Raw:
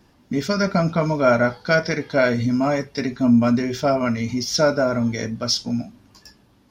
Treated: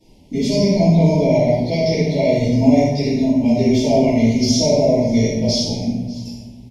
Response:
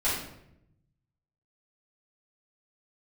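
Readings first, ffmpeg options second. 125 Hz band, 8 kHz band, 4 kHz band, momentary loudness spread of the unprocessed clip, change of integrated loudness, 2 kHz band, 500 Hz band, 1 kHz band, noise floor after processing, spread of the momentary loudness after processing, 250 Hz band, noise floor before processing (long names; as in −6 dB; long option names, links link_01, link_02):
+7.5 dB, can't be measured, +3.0 dB, 9 LU, +4.5 dB, −7.0 dB, +4.5 dB, −2.0 dB, −40 dBFS, 9 LU, +5.5 dB, −57 dBFS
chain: -filter_complex "[0:a]equalizer=frequency=1100:width_type=o:width=1.8:gain=-6,alimiter=limit=-17dB:level=0:latency=1,asuperstop=centerf=1400:order=8:qfactor=1.2,aecho=1:1:591:0.0891[link_01];[1:a]atrim=start_sample=2205,asetrate=26460,aresample=44100[link_02];[link_01][link_02]afir=irnorm=-1:irlink=0,volume=-5dB"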